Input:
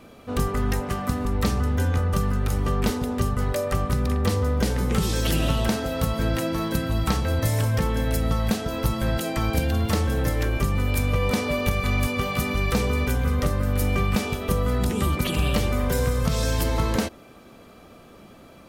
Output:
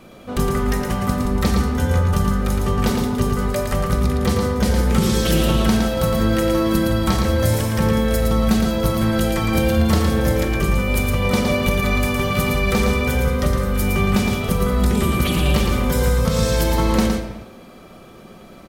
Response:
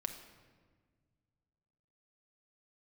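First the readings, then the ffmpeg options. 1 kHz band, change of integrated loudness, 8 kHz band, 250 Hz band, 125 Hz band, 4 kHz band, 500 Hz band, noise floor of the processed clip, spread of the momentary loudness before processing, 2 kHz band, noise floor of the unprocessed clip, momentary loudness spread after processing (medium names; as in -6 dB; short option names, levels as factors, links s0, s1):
+5.0 dB, +5.5 dB, +5.0 dB, +7.5 dB, +4.0 dB, +5.5 dB, +6.5 dB, -42 dBFS, 3 LU, +5.5 dB, -48 dBFS, 3 LU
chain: -filter_complex "[0:a]bandreject=f=2700:w=30,aecho=1:1:113:0.562[s0];[1:a]atrim=start_sample=2205,afade=t=out:st=0.44:d=0.01,atrim=end_sample=19845[s1];[s0][s1]afir=irnorm=-1:irlink=0,volume=1.68"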